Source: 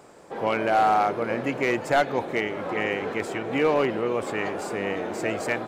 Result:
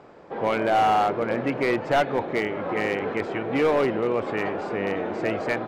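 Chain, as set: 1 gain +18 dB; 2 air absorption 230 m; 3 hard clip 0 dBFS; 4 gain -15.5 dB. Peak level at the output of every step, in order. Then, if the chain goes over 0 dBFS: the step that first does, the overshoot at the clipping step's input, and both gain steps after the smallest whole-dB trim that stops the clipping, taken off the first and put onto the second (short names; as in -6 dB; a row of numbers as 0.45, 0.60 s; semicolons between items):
+5.5, +4.5, 0.0, -15.5 dBFS; step 1, 4.5 dB; step 1 +13 dB, step 4 -10.5 dB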